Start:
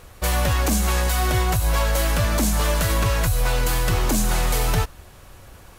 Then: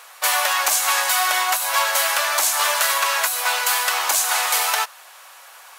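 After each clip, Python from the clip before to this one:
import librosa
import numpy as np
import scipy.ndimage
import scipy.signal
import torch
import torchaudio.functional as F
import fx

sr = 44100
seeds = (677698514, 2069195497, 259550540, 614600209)

y = scipy.signal.sosfilt(scipy.signal.butter(4, 770.0, 'highpass', fs=sr, output='sos'), x)
y = F.gain(torch.from_numpy(y), 7.5).numpy()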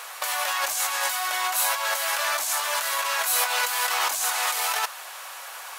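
y = fx.over_compress(x, sr, threshold_db=-26.0, ratio=-1.0)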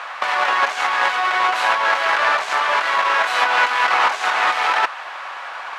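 y = fx.halfwave_hold(x, sr)
y = fx.cheby_harmonics(y, sr, harmonics=(4,), levels_db=(-12,), full_scale_db=-10.0)
y = fx.bandpass_edges(y, sr, low_hz=700.0, high_hz=2400.0)
y = F.gain(torch.from_numpy(y), 6.0).numpy()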